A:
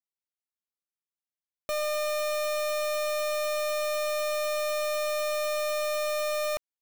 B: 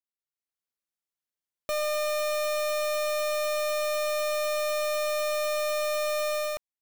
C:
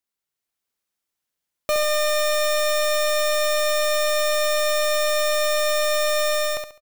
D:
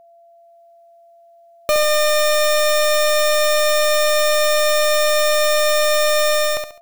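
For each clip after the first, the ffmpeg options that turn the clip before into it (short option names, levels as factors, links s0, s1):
-af "dynaudnorm=f=120:g=7:m=3.16,volume=0.355"
-af "aecho=1:1:69|138|207|276:0.501|0.155|0.0482|0.0149,volume=2.51"
-af "aeval=exprs='val(0)+0.00282*sin(2*PI*680*n/s)':c=same,volume=1.78"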